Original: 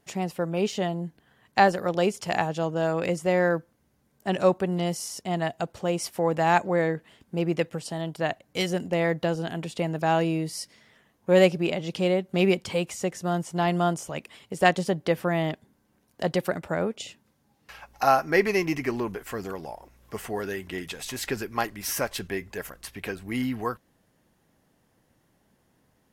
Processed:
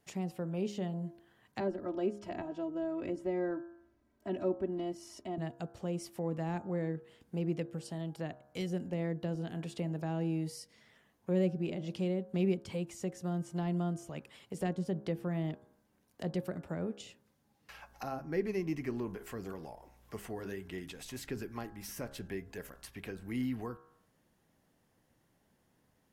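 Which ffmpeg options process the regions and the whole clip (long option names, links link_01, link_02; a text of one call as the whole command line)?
ffmpeg -i in.wav -filter_complex "[0:a]asettb=1/sr,asplit=3[link_01][link_02][link_03];[link_01]atrim=end=1.604[link_04];[link_02]atrim=start=1.6:end=5.38,asetpts=PTS-STARTPTS,afade=type=in:duration=0.004:curve=qsin,afade=type=out:start_time=3.776:duration=0.004:curve=qsin,lowpass=frequency=1800:poles=1,aecho=1:1:3.1:0.92,atrim=end_sample=166698[link_05];[link_03]atrim=start=5.376[link_06];[link_04][link_05]acrossfade=duration=0.004:curve1=hsin:curve2=qsin[link_07];[link_07][link_06]acrossfade=duration=0.004:curve1=qsin:curve2=hsin,bandreject=frequency=68.18:width_type=h:width=4,bandreject=frequency=136.36:width_type=h:width=4,bandreject=frequency=204.54:width_type=h:width=4,bandreject=frequency=272.72:width_type=h:width=4,bandreject=frequency=340.9:width_type=h:width=4,bandreject=frequency=409.08:width_type=h:width=4,bandreject=frequency=477.26:width_type=h:width=4,bandreject=frequency=545.44:width_type=h:width=4,bandreject=frequency=613.62:width_type=h:width=4,bandreject=frequency=681.8:width_type=h:width=4,bandreject=frequency=749.98:width_type=h:width=4,bandreject=frequency=818.16:width_type=h:width=4,bandreject=frequency=886.34:width_type=h:width=4,bandreject=frequency=954.52:width_type=h:width=4,bandreject=frequency=1022.7:width_type=h:width=4,bandreject=frequency=1090.88:width_type=h:width=4,bandreject=frequency=1159.06:width_type=h:width=4,bandreject=frequency=1227.24:width_type=h:width=4,bandreject=frequency=1295.42:width_type=h:width=4,bandreject=frequency=1363.6:width_type=h:width=4,bandreject=frequency=1431.78:width_type=h:width=4,bandreject=frequency=1499.96:width_type=h:width=4,bandreject=frequency=1568.14:width_type=h:width=4,bandreject=frequency=1636.32:width_type=h:width=4,bandreject=frequency=1704.5:width_type=h:width=4,acrossover=split=380[link_08][link_09];[link_09]acompressor=threshold=-42dB:ratio=3[link_10];[link_08][link_10]amix=inputs=2:normalize=0,volume=-5.5dB" out.wav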